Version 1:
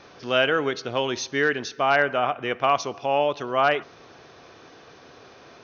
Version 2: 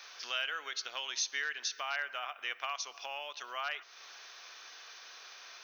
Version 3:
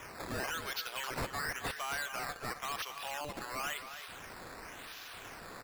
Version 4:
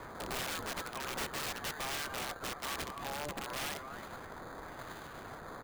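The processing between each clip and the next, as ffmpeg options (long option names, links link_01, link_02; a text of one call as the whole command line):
ffmpeg -i in.wav -af "aemphasis=mode=production:type=50kf,acompressor=threshold=-32dB:ratio=3,highpass=1400" out.wav
ffmpeg -i in.wav -filter_complex "[0:a]acrusher=samples=10:mix=1:aa=0.000001:lfo=1:lforange=10:lforate=0.95,asoftclip=type=tanh:threshold=-36dB,asplit=2[link_01][link_02];[link_02]adelay=268.2,volume=-9dB,highshelf=frequency=4000:gain=-6.04[link_03];[link_01][link_03]amix=inputs=2:normalize=0,volume=3.5dB" out.wav
ffmpeg -i in.wav -filter_complex "[0:a]acrossover=split=530|2000[link_01][link_02][link_03];[link_03]acrusher=samples=16:mix=1:aa=0.000001[link_04];[link_01][link_02][link_04]amix=inputs=3:normalize=0,aeval=exprs='(mod(50.1*val(0)+1,2)-1)/50.1':channel_layout=same,volume=2dB" out.wav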